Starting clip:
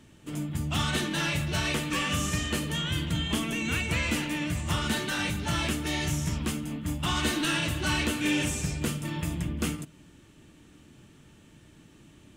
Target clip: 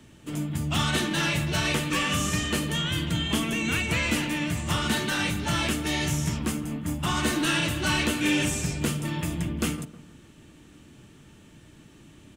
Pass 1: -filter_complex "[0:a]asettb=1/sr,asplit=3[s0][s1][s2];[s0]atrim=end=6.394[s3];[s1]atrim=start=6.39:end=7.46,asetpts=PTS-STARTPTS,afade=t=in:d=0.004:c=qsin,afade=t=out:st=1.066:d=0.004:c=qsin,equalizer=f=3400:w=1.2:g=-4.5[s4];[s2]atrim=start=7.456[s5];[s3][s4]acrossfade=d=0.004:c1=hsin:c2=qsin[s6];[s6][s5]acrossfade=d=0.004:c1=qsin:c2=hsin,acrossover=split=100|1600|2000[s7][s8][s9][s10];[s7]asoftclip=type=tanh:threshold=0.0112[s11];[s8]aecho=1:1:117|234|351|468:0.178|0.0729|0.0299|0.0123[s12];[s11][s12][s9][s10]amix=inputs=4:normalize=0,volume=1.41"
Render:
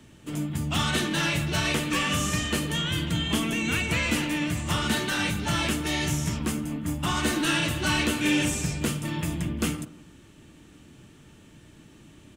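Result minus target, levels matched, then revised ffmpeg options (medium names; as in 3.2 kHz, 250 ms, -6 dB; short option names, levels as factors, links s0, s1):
echo 39 ms early
-filter_complex "[0:a]asettb=1/sr,asplit=3[s0][s1][s2];[s0]atrim=end=6.394[s3];[s1]atrim=start=6.39:end=7.46,asetpts=PTS-STARTPTS,afade=t=in:d=0.004:c=qsin,afade=t=out:st=1.066:d=0.004:c=qsin,equalizer=f=3400:w=1.2:g=-4.5[s4];[s2]atrim=start=7.456[s5];[s3][s4]acrossfade=d=0.004:c1=hsin:c2=qsin[s6];[s6][s5]acrossfade=d=0.004:c1=qsin:c2=hsin,acrossover=split=100|1600|2000[s7][s8][s9][s10];[s7]asoftclip=type=tanh:threshold=0.0112[s11];[s8]aecho=1:1:156|312|468|624:0.178|0.0729|0.0299|0.0123[s12];[s11][s12][s9][s10]amix=inputs=4:normalize=0,volume=1.41"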